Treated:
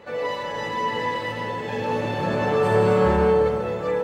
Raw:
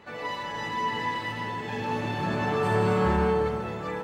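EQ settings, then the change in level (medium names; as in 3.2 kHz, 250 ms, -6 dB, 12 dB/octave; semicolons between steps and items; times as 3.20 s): peaking EQ 520 Hz +13.5 dB 0.33 oct; +2.5 dB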